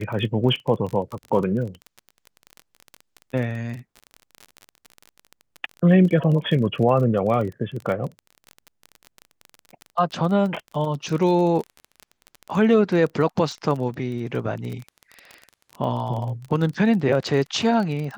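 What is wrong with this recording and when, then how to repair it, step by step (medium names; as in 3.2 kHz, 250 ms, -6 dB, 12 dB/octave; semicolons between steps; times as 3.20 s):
crackle 29 per s -28 dBFS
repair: de-click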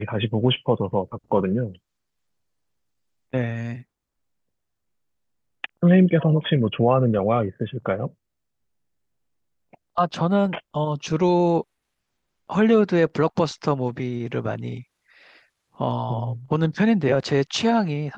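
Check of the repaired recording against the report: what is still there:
nothing left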